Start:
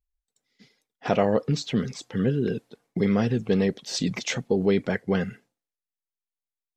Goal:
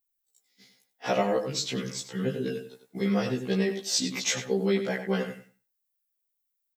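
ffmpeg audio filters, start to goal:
-filter_complex "[0:a]aemphasis=mode=production:type=bsi,asplit=2[s0][s1];[s1]adelay=95,lowpass=f=3600:p=1,volume=0.398,asplit=2[s2][s3];[s3]adelay=95,lowpass=f=3600:p=1,volume=0.2,asplit=2[s4][s5];[s5]adelay=95,lowpass=f=3600:p=1,volume=0.2[s6];[s2][s4][s6]amix=inputs=3:normalize=0[s7];[s0][s7]amix=inputs=2:normalize=0,afftfilt=real='re*1.73*eq(mod(b,3),0)':imag='im*1.73*eq(mod(b,3),0)':win_size=2048:overlap=0.75"

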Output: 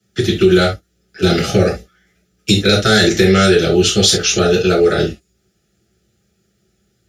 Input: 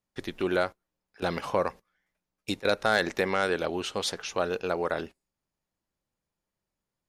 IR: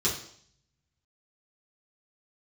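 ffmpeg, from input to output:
-filter_complex "[0:a]asuperstop=centerf=1000:order=12:qfactor=2.5[s0];[1:a]atrim=start_sample=2205,afade=t=out:st=0.13:d=0.01,atrim=end_sample=6174[s1];[s0][s1]afir=irnorm=-1:irlink=0,acrossover=split=170|3000[s2][s3][s4];[s3]acompressor=threshold=0.00891:ratio=1.5[s5];[s2][s5][s4]amix=inputs=3:normalize=0,alimiter=level_in=4.47:limit=0.891:release=50:level=0:latency=1" -ar 44100 -c:a libmp3lame -b:a 96k

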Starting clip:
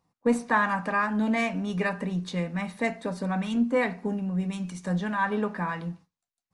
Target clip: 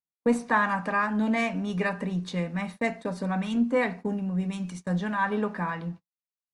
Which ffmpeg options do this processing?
-af "asetnsamples=n=441:p=0,asendcmd='5.7 highshelf g -11',highshelf=f=7100:g=-2,agate=range=0.0224:threshold=0.0112:ratio=16:detection=peak"

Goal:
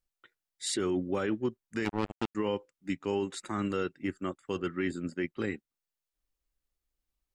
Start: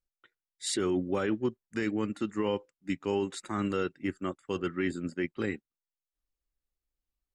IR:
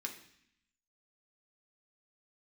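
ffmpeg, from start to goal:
-filter_complex "[0:a]asplit=2[s0][s1];[s1]acompressor=threshold=0.00794:ratio=5,volume=0.794[s2];[s0][s2]amix=inputs=2:normalize=0,asettb=1/sr,asplit=3[s3][s4][s5];[s3]atrim=end=1.854[s6];[s4]atrim=start=1.85:end=2.35,asetpts=PTS-STARTPTS,afade=t=in:d=0.004:c=qsin,afade=t=out:st=0.496:d=0.004:c=qsin,acrusher=bits=3:mix=0:aa=0.5[s7];[s5]atrim=start=2.346[s8];[s6][s7]acrossfade=d=0.004:c1=hsin:c2=qsin[s9];[s9][s8]acrossfade=d=0.004:c1=qsin:c2=hsin,volume=0.75"

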